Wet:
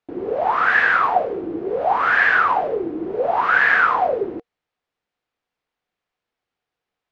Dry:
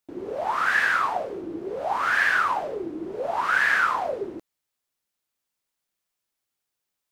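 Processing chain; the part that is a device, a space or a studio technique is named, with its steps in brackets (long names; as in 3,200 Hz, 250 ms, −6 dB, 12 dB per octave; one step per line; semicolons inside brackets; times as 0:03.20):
inside a cardboard box (low-pass filter 2,800 Hz 12 dB per octave; hollow resonant body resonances 470/730 Hz, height 7 dB, ringing for 60 ms)
level +6 dB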